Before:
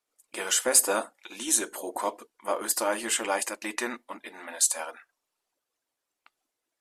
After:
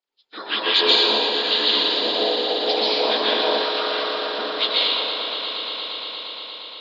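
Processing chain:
partials spread apart or drawn together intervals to 76%
harmonic and percussive parts rebalanced harmonic −12 dB
in parallel at −2 dB: downward compressor, threshold −37 dBFS, peak gain reduction 19.5 dB
on the sum: dense smooth reverb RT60 2.2 s, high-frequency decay 0.75×, pre-delay 115 ms, DRR −7 dB
noise gate −54 dBFS, range −6 dB
0:03.62–0:04.39: high-pass filter 920 Hz 24 dB per octave
on a send: echo that builds up and dies away 117 ms, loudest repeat 5, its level −13 dB

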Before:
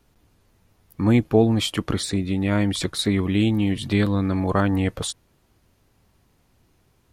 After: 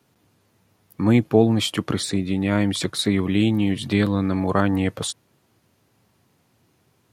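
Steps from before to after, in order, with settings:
high-pass filter 98 Hz 24 dB per octave
level +1 dB

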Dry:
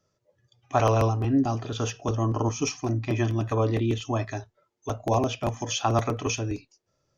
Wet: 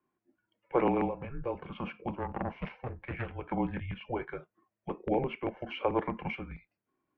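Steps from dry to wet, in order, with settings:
0:02.14–0:03.33: phase distortion by the signal itself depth 0.32 ms
single-sideband voice off tune −250 Hz 410–2,800 Hz
level −3.5 dB

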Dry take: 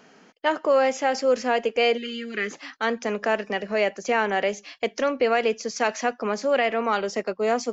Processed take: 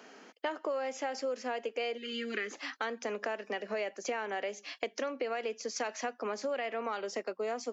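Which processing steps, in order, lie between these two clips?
high-pass filter 240 Hz 24 dB per octave
downward compressor 6 to 1, threshold −33 dBFS, peak gain reduction 16 dB

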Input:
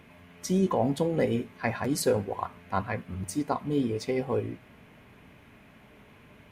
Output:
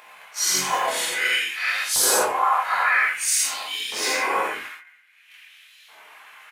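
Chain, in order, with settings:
random phases in long frames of 200 ms
noise gate −47 dBFS, range −41 dB
high-shelf EQ 2,000 Hz +9.5 dB
hum removal 81.5 Hz, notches 38
upward compression, threshold −37 dBFS
in parallel at −6.5 dB: soft clipping −22.5 dBFS, distortion −13 dB
on the sum: auto-filter high-pass saw up 0.51 Hz 920–4,000 Hz
reverb whose tail is shaped and stops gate 140 ms flat, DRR −3.5 dB
dynamic equaliser 4,100 Hz, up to −7 dB, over −42 dBFS, Q 1.5
chorus effect 0.44 Hz, delay 18 ms, depth 6.8 ms
pitch-shifted copies added −5 semitones −6 dB
reversed playback
downward compressor, threshold −24 dBFS, peak gain reduction 5.5 dB
reversed playback
level +8.5 dB

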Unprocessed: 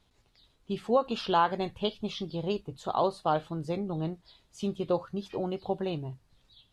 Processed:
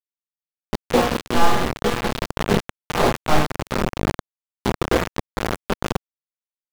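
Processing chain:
sub-harmonics by changed cycles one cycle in 3, muted
tuned comb filter 120 Hz, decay 0.9 s, harmonics all, mix 80%
feedback delay with all-pass diffusion 452 ms, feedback 53%, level −8.5 dB
rectangular room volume 34 cubic metres, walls mixed, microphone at 1.1 metres
bit reduction 5 bits
high-shelf EQ 5,500 Hz −9 dB
automatic gain control gain up to 15 dB
low-shelf EQ 230 Hz +7 dB
level −2.5 dB

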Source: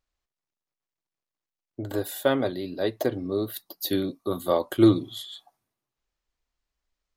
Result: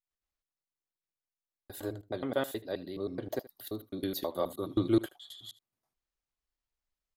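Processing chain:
slices reordered back to front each 106 ms, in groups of 4
single-tap delay 77 ms −19 dB
level −8.5 dB

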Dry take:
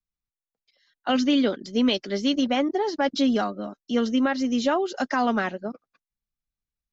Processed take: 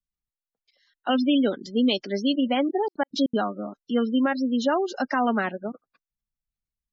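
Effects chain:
gate on every frequency bin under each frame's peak −25 dB strong
0:02.76–0:03.37: gate pattern "xx.x.xx.x" 198 BPM −60 dB

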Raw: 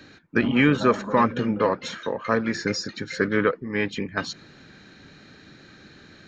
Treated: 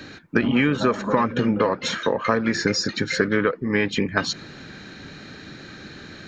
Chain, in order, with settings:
downward compressor 6 to 1, threshold −25 dBFS, peak gain reduction 11.5 dB
level +8.5 dB

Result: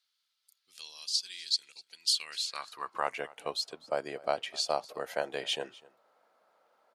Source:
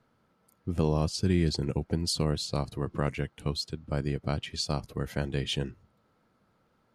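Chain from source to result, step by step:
high-pass filter sweep 3,900 Hz → 640 Hz, 0:01.92–0:03.23
on a send: single-tap delay 250 ms −22 dB

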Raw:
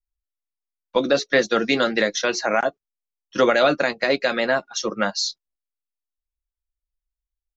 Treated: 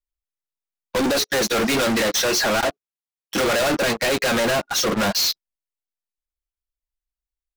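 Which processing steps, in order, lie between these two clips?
0:01.06–0:03.41: high-pass filter 170 Hz 6 dB per octave
leveller curve on the samples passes 5
soft clipping −24 dBFS, distortion −9 dB
level +5 dB

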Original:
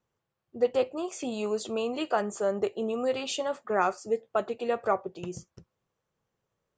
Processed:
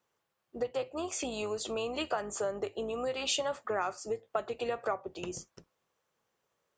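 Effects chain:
sub-octave generator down 2 octaves, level −2 dB
downward compressor 10 to 1, threshold −31 dBFS, peak gain reduction 13 dB
high-pass filter 570 Hz 6 dB per octave
level +5 dB

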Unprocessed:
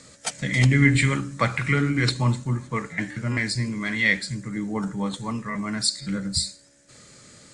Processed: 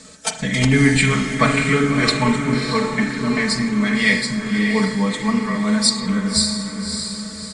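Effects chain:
notch filter 2,000 Hz, Q 16
comb filter 4.6 ms, depth 91%
feedback delay with all-pass diffusion 604 ms, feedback 47%, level −6 dB
on a send at −7 dB: convolution reverb RT60 0.70 s, pre-delay 38 ms
on the sum: level +3.5 dB

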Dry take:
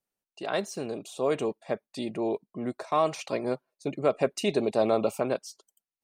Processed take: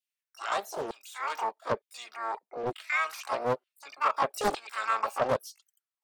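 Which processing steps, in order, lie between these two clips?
pitch-shifted copies added +12 semitones −3 dB
auto-filter high-pass saw down 1.1 Hz 380–3,200 Hz
highs frequency-modulated by the lows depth 0.77 ms
level −5 dB

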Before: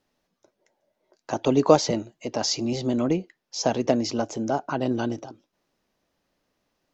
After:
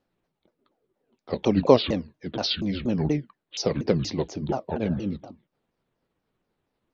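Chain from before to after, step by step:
pitch shifter swept by a sawtooth −10.5 semitones, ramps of 238 ms
healed spectral selection 0:04.88–0:05.13, 530–1,700 Hz both
one half of a high-frequency compander decoder only

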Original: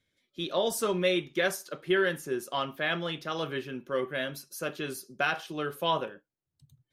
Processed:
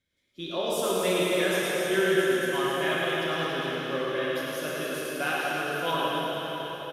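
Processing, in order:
reverse bouncing-ball delay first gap 110 ms, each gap 1.4×, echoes 5
dense smooth reverb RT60 4.3 s, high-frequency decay 1×, DRR −5 dB
level −4.5 dB

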